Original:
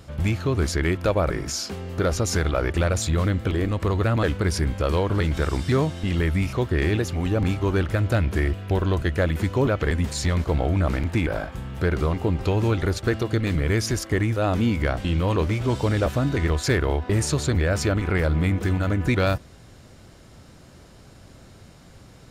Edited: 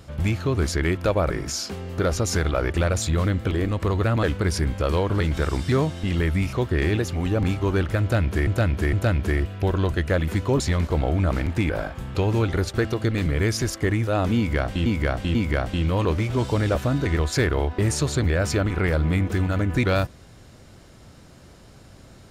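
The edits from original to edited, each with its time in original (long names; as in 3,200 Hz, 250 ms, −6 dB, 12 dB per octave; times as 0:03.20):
0:08.01–0:08.47: repeat, 3 plays
0:09.68–0:10.17: remove
0:11.72–0:12.44: remove
0:14.66–0:15.15: repeat, 3 plays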